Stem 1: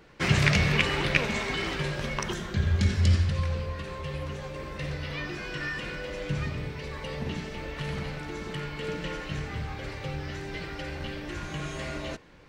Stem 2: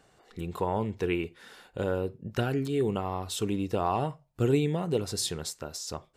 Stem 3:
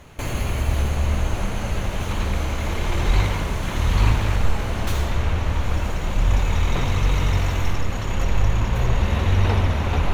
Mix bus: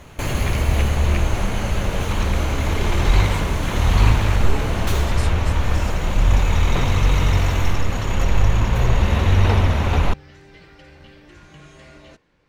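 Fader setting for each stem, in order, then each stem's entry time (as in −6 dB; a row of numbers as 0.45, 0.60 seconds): −9.5, −6.5, +3.0 decibels; 0.00, 0.00, 0.00 seconds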